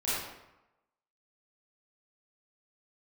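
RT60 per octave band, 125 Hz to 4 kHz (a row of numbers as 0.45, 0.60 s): 0.90, 0.90, 0.90, 1.0, 0.80, 0.65 s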